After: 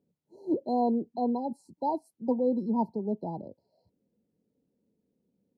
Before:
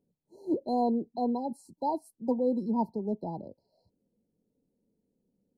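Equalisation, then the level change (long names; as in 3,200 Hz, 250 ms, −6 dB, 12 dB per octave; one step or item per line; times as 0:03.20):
high-pass filter 65 Hz
low-pass filter 3,300 Hz 6 dB per octave
+1.0 dB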